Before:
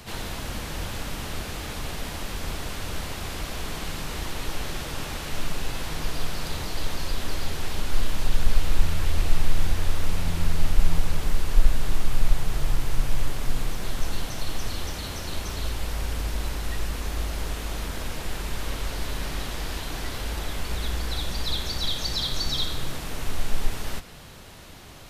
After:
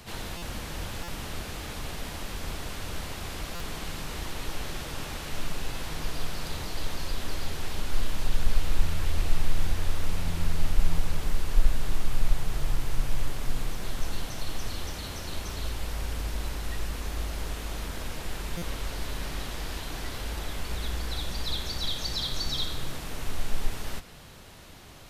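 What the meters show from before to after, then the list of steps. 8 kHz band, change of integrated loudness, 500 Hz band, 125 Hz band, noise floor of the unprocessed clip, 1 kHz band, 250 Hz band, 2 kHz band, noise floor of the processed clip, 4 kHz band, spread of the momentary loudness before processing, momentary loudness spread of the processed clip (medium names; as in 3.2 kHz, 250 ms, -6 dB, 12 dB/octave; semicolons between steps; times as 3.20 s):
-3.5 dB, -3.5 dB, -3.5 dB, -3.5 dB, -35 dBFS, -3.5 dB, -3.5 dB, -3.5 dB, -39 dBFS, -3.5 dB, 6 LU, 6 LU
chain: buffer glitch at 0.37/1.03/3.55/18.57 s, samples 256, times 8; trim -3.5 dB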